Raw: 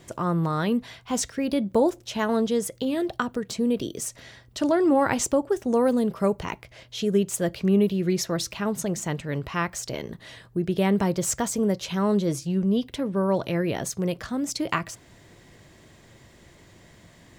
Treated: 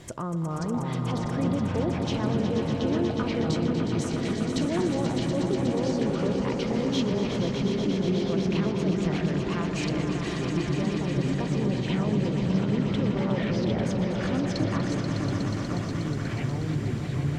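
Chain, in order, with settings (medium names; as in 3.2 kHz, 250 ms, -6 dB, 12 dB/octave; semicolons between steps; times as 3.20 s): in parallel at +1.5 dB: compression, threshold -36 dBFS, peak gain reduction 18.5 dB; on the sum: bass shelf 140 Hz +4.5 dB; low-pass that closes with the level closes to 760 Hz, closed at -16.5 dBFS; peak limiter -19.5 dBFS, peak gain reduction 11.5 dB; on a send: echo with a slow build-up 121 ms, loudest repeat 5, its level -8.5 dB; on the sum: ever faster or slower copies 506 ms, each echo -5 st, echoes 2; trim -3.5 dB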